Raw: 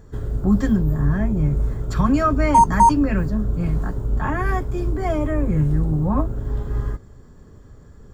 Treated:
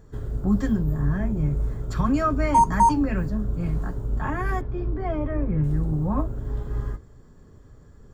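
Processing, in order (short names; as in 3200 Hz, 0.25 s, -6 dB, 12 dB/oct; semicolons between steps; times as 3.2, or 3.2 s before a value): flange 1.8 Hz, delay 6.1 ms, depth 2.2 ms, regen -82%; 4.61–5.64 air absorption 270 m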